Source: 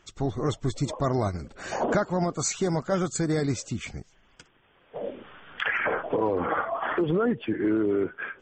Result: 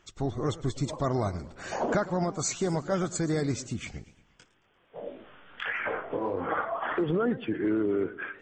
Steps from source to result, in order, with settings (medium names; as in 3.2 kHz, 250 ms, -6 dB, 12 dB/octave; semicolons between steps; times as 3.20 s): 3.98–6.48 s: chorus 1.6 Hz, delay 18.5 ms, depth 6 ms; modulated delay 115 ms, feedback 46%, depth 212 cents, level -17.5 dB; trim -2.5 dB